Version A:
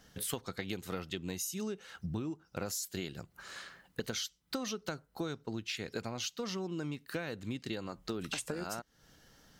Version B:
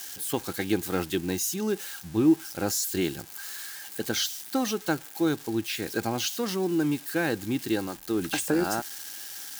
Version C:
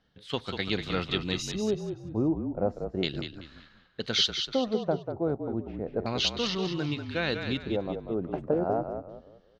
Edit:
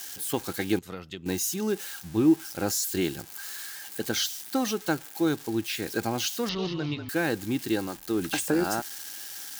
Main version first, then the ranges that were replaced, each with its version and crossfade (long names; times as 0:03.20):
B
0:00.79–0:01.26: punch in from A
0:06.49–0:07.09: punch in from C